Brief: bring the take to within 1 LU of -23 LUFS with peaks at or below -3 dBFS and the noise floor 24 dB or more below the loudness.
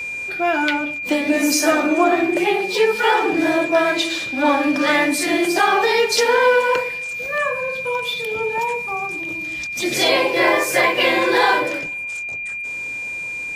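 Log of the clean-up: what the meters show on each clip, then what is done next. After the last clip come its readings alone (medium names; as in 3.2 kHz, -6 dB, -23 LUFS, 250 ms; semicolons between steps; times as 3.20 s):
steady tone 2.4 kHz; tone level -25 dBFS; loudness -18.5 LUFS; peak level -4.0 dBFS; loudness target -23.0 LUFS
-> band-stop 2.4 kHz, Q 30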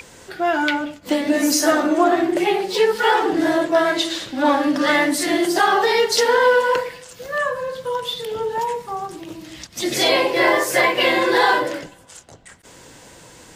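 steady tone not found; loudness -18.5 LUFS; peak level -4.5 dBFS; loudness target -23.0 LUFS
-> trim -4.5 dB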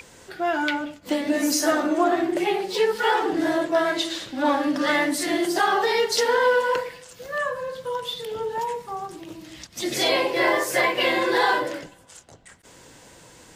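loudness -23.0 LUFS; peak level -9.0 dBFS; noise floor -50 dBFS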